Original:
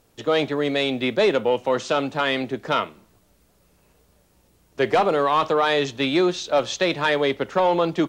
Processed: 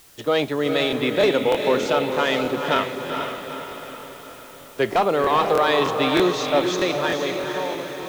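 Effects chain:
fade-out on the ending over 1.69 s
background noise white −51 dBFS
on a send: feedback delay with all-pass diffusion 460 ms, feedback 54%, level −5 dB
on the sum: regular buffer underruns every 0.31 s, samples 1,024, repeat, from 0:00.88

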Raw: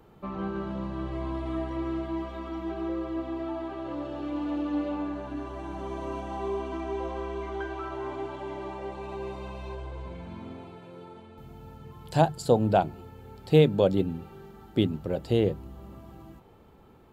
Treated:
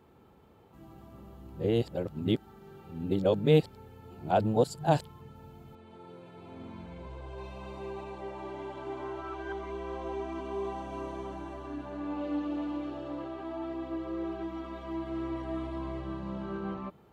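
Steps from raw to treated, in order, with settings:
played backwards from end to start
high-pass filter 60 Hz
level −3.5 dB

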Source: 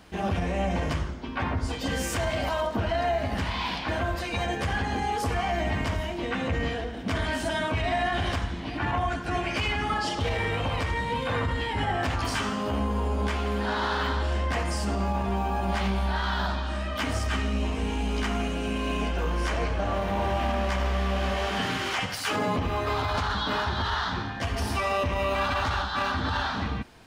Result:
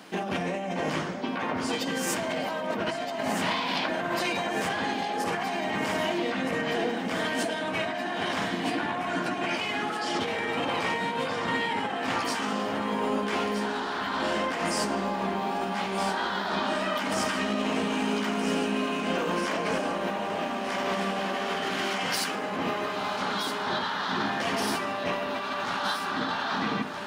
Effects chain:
high-pass filter 180 Hz 24 dB per octave
compressor whose output falls as the input rises −33 dBFS, ratio −1
delay that swaps between a low-pass and a high-pass 635 ms, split 2,100 Hz, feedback 81%, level −7 dB
level +2.5 dB

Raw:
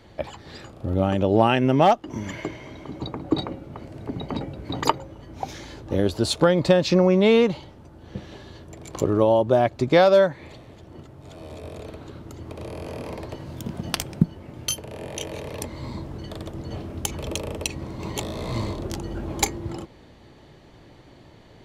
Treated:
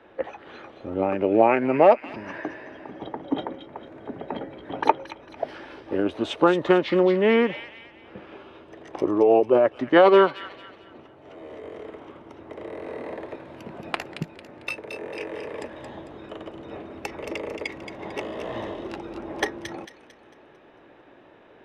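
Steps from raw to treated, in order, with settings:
formants moved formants −3 semitones
three-way crossover with the lows and the highs turned down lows −21 dB, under 290 Hz, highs −21 dB, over 2,600 Hz
delay with a high-pass on its return 224 ms, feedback 39%, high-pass 2,400 Hz, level −6 dB
level +3 dB

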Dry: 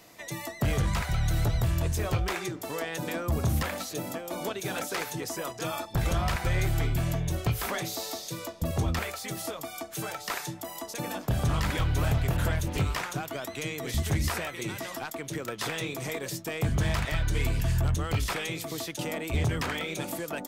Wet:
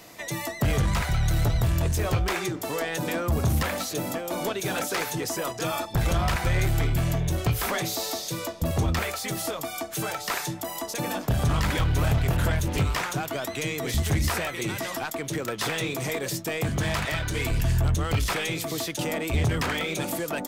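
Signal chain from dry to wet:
0:16.58–0:17.51: high-pass filter 160 Hz 6 dB per octave
in parallel at −3 dB: hard clipping −34.5 dBFS, distortion −4 dB
on the sum: level +1.5 dB

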